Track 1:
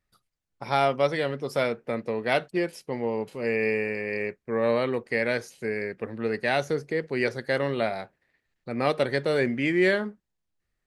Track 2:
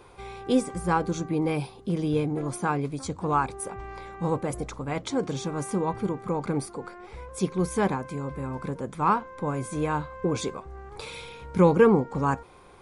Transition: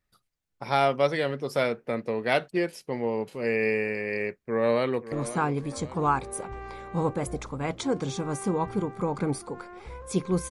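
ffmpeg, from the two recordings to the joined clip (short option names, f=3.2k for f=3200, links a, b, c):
-filter_complex "[0:a]apad=whole_dur=10.5,atrim=end=10.5,atrim=end=5.122[a];[1:a]atrim=start=2.388:end=7.77[b];[a][b]acrossfade=d=0.004:c1=hsin:c2=hsin,asplit=2[c][d];[d]afade=t=in:st=4.35:d=0.01,afade=t=out:st=5.12:d=0.01,aecho=0:1:540|1080|1620|2160|2700:0.211349|0.105674|0.0528372|0.0264186|0.0132093[e];[c][e]amix=inputs=2:normalize=0"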